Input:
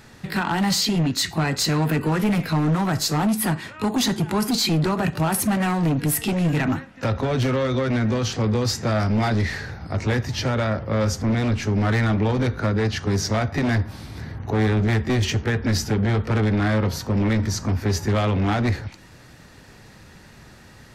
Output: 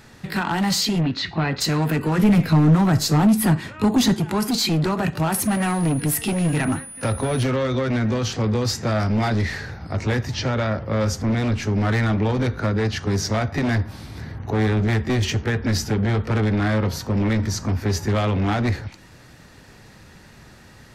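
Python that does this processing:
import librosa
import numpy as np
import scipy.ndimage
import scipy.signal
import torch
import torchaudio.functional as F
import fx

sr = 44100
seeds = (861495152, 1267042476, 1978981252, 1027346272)

y = fx.lowpass(x, sr, hz=4200.0, slope=24, at=(1.0, 1.6), fade=0.02)
y = fx.low_shelf(y, sr, hz=350.0, db=7.5, at=(2.18, 4.15))
y = fx.dmg_tone(y, sr, hz=9900.0, level_db=-36.0, at=(5.42, 7.42), fade=0.02)
y = fx.lowpass(y, sr, hz=7200.0, slope=24, at=(10.34, 10.76))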